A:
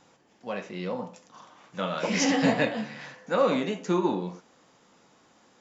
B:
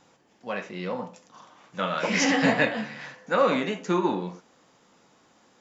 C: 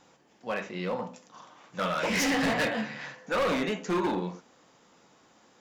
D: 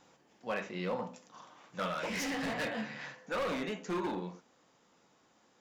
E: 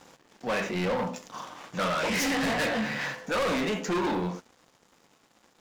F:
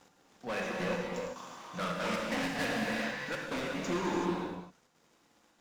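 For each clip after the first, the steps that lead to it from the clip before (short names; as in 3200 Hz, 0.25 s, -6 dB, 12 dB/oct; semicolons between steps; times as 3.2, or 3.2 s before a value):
dynamic EQ 1700 Hz, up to +6 dB, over -44 dBFS, Q 0.86
overloaded stage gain 23.5 dB; notches 50/100/150/200/250 Hz
vocal rider within 3 dB 0.5 s; gain -6.5 dB
sample leveller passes 3; gain +2.5 dB
step gate "x.xxxxxxx.xx..x" 188 bpm; reverb, pre-delay 17 ms, DRR -1.5 dB; gain -8 dB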